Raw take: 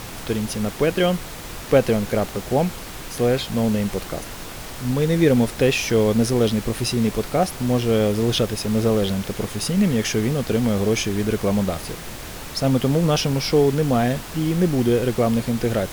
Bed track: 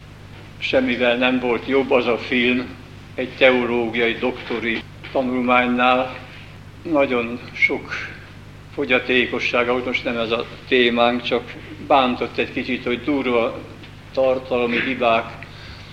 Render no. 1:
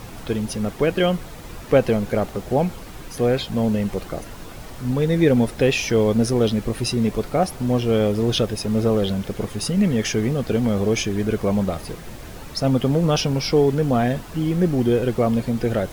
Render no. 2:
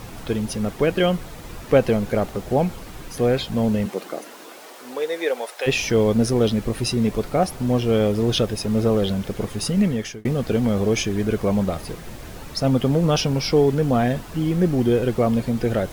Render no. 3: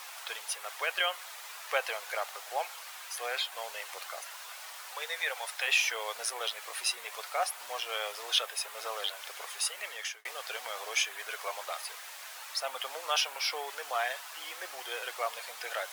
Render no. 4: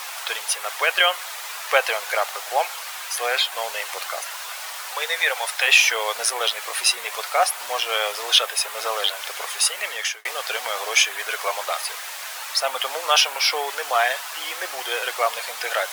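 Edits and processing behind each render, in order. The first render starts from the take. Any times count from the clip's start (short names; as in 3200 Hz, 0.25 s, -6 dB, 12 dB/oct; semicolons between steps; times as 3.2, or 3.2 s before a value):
denoiser 8 dB, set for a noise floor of -35 dBFS
3.85–5.66 HPF 200 Hz -> 620 Hz 24 dB/oct; 9.81–10.25 fade out linear
Bessel high-pass 1200 Hz, order 6; dynamic EQ 5300 Hz, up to -6 dB, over -41 dBFS, Q 1.5
gain +12 dB; limiter -2 dBFS, peak gain reduction 1.5 dB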